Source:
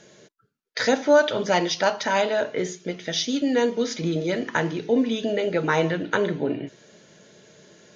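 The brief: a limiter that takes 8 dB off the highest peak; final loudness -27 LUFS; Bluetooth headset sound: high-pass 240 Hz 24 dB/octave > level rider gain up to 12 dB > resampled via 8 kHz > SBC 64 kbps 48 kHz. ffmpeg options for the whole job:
-af "alimiter=limit=0.188:level=0:latency=1,highpass=f=240:w=0.5412,highpass=f=240:w=1.3066,dynaudnorm=m=3.98,aresample=8000,aresample=44100,volume=0.944" -ar 48000 -c:a sbc -b:a 64k

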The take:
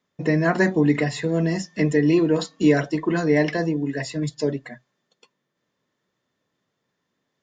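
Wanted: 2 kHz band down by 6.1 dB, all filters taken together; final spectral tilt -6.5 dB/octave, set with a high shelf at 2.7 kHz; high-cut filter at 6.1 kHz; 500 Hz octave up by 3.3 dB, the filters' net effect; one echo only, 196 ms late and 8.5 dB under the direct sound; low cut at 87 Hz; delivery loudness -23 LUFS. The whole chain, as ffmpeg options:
-af "highpass=87,lowpass=6100,equalizer=f=500:t=o:g=4.5,equalizer=f=2000:t=o:g=-4.5,highshelf=f=2700:g=-8,aecho=1:1:196:0.376,volume=0.668"

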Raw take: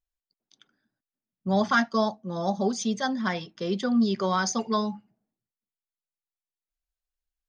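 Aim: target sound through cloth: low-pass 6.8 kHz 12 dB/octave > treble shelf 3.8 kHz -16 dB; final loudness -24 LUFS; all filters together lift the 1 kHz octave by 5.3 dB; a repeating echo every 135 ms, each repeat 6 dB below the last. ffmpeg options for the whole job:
-af "lowpass=6800,equalizer=f=1000:t=o:g=8,highshelf=f=3800:g=-16,aecho=1:1:135|270|405|540|675|810:0.501|0.251|0.125|0.0626|0.0313|0.0157,volume=0.944"

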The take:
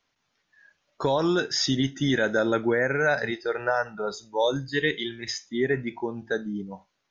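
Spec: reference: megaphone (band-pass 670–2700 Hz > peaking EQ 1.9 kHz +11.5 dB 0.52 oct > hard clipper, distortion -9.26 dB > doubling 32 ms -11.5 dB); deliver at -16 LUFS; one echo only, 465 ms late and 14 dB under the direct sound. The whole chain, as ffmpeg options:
-filter_complex "[0:a]highpass=670,lowpass=2700,equalizer=f=1900:t=o:w=0.52:g=11.5,aecho=1:1:465:0.2,asoftclip=type=hard:threshold=0.0944,asplit=2[s0][s1];[s1]adelay=32,volume=0.266[s2];[s0][s2]amix=inputs=2:normalize=0,volume=3.55"

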